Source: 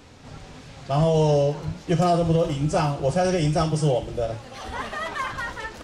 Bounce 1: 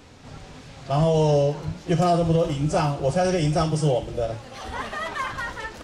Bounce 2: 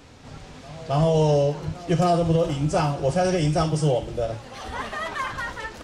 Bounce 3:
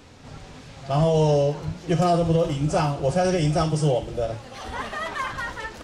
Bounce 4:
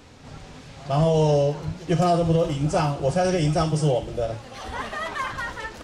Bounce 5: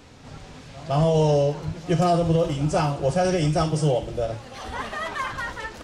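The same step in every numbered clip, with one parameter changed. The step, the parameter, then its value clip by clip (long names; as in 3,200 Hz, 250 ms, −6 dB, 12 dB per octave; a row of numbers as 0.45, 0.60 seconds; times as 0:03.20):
echo ahead of the sound, delay time: 42, 267, 66, 100, 157 milliseconds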